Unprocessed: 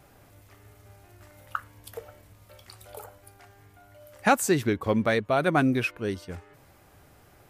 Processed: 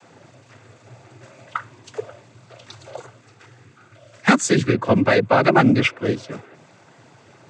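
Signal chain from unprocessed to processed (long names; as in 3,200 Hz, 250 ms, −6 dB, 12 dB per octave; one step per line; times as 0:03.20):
0:02.98–0:04.73: parametric band 680 Hz −13 dB 0.71 octaves
cochlear-implant simulation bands 16
level +8.5 dB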